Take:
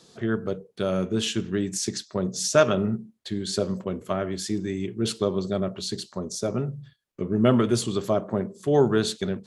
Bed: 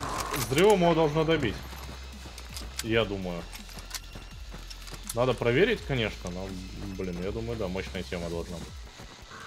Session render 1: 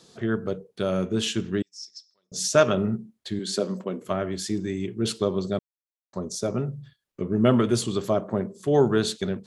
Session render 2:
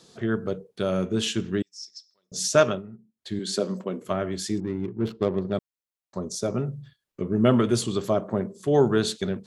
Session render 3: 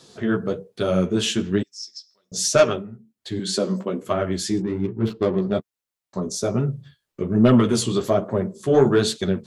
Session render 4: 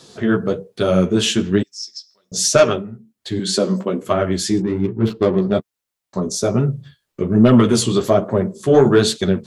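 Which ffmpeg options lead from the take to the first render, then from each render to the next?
-filter_complex "[0:a]asettb=1/sr,asplit=3[s0][s1][s2];[s0]atrim=end=1.624[s3];[s1]atrim=start=1.62:end=2.32,asetpts=PTS-STARTPTS,afade=t=in:d=0.004:c=qsin,afade=t=out:st=0.696:d=0.004:c=qsin,bandpass=f=5300:t=q:w=17[s4];[s2]atrim=start=2.316[s5];[s3][s4]acrossfade=d=0.004:c1=hsin:c2=qsin[s6];[s6][s5]acrossfade=d=0.004:c1=qsin:c2=hsin,asettb=1/sr,asplit=3[s7][s8][s9];[s7]atrim=end=3.394[s10];[s8]atrim=start=3.39:end=4.06,asetpts=PTS-STARTPTS,afade=t=in:d=0.004:c=qsin,afade=t=out:st=0.666:d=0.004:c=qsin,highpass=f=170:w=0.5412,highpass=f=170:w=1.3066[s11];[s9]atrim=start=4.056[s12];[s10][s11]acrossfade=d=0.004:c1=hsin:c2=qsin[s13];[s13][s12]acrossfade=d=0.004:c1=qsin:c2=hsin,asplit=3[s14][s15][s16];[s14]atrim=end=5.59,asetpts=PTS-STARTPTS,afade=t=out:st=5.586:d=0.004:c=hsin[s17];[s15]atrim=start=5.59:end=6.13,asetpts=PTS-STARTPTS,volume=0[s18];[s16]atrim=start=6.13,asetpts=PTS-STARTPTS,afade=t=in:d=0.004:c=hsin[s19];[s17][s18][s19]concat=n=3:v=0:a=1"
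-filter_complex "[0:a]asettb=1/sr,asplit=3[s0][s1][s2];[s0]atrim=end=4.604[s3];[s1]atrim=start=4.6:end=5.53,asetpts=PTS-STARTPTS,afade=t=in:d=0.004:c=qsin,afade=t=out:st=0.926:d=0.004:c=qsin,adynamicsmooth=sensitivity=2:basefreq=630[s4];[s2]atrim=start=5.526[s5];[s3][s4]acrossfade=d=0.004:c1=hsin:c2=qsin[s6];[s6][s5]acrossfade=d=0.004:c1=qsin:c2=hsin,asplit=3[s7][s8][s9];[s7]atrim=end=2.82,asetpts=PTS-STARTPTS,afade=t=out:st=2.57:d=0.25:c=qsin:silence=0.149624[s10];[s8]atrim=start=2.82:end=3.16,asetpts=PTS-STARTPTS,volume=0.15[s11];[s9]atrim=start=3.16,asetpts=PTS-STARTPTS,afade=t=in:d=0.25:c=qsin:silence=0.149624[s12];[s10][s11][s12]concat=n=3:v=0:a=1"
-af "aeval=exprs='0.562*sin(PI/2*1.58*val(0)/0.562)':c=same,flanger=delay=7:depth=9.8:regen=-11:speed=1.2:shape=triangular"
-af "volume=1.78,alimiter=limit=0.708:level=0:latency=1"

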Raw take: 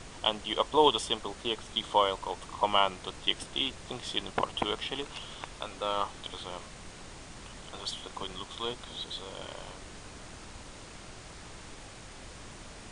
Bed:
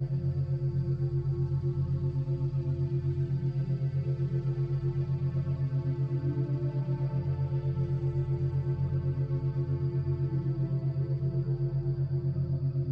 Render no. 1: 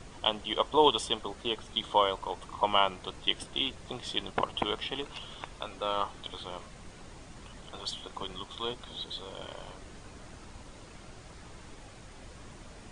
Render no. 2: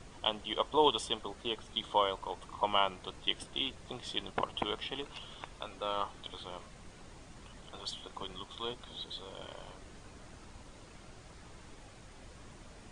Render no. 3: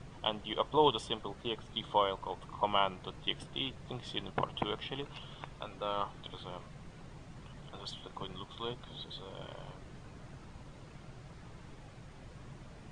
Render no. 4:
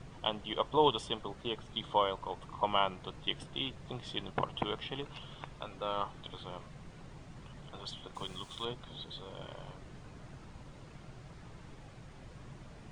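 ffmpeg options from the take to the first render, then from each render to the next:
-af "afftdn=nr=6:nf=-48"
-af "volume=0.631"
-af "lowpass=f=3400:p=1,equalizer=f=140:w=2.3:g=10"
-filter_complex "[0:a]asettb=1/sr,asplit=3[s0][s1][s2];[s0]atrim=end=8.154[s3];[s1]atrim=start=8.15:end=8.65,asetpts=PTS-STARTPTS,afade=t=in:d=0.004:c=qsin,afade=t=out:st=0.496:d=0.004:c=qsin,aemphasis=mode=production:type=75fm[s4];[s2]atrim=start=8.646[s5];[s3][s4]acrossfade=d=0.004:c1=hsin:c2=qsin[s6];[s6][s5]acrossfade=d=0.004:c1=qsin:c2=hsin"

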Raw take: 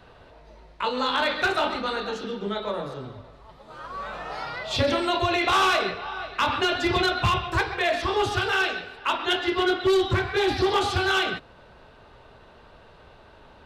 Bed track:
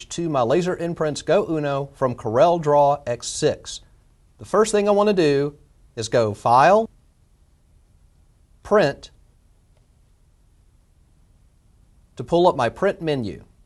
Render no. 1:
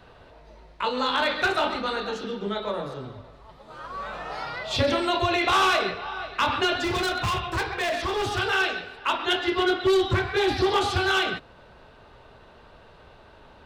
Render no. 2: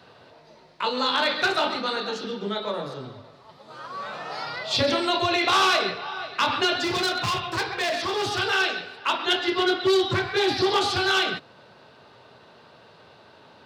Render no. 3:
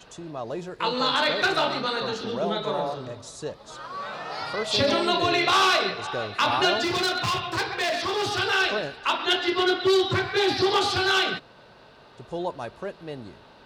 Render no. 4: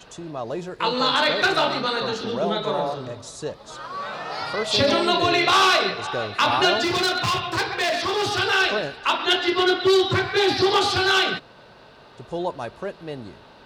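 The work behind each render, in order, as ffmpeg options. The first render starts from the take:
-filter_complex "[0:a]asettb=1/sr,asplit=3[s0][s1][s2];[s0]atrim=end=6.844[s3];[s1]atrim=start=6.84:end=8.39,asetpts=PTS-STARTPTS,afade=t=in:d=0.004:c=qsin,afade=t=out:st=1.546:d=0.004:c=qsin,asoftclip=type=hard:threshold=0.0708[s4];[s2]atrim=start=8.386[s5];[s3][s4]acrossfade=d=0.004:c1=hsin:c2=qsin[s6];[s6][s5]acrossfade=d=0.004:c1=qsin:c2=hsin"
-af "highpass=f=110:w=0.5412,highpass=f=110:w=1.3066,equalizer=f=4700:w=1.7:g=7"
-filter_complex "[1:a]volume=0.2[s0];[0:a][s0]amix=inputs=2:normalize=0"
-af "volume=1.41"

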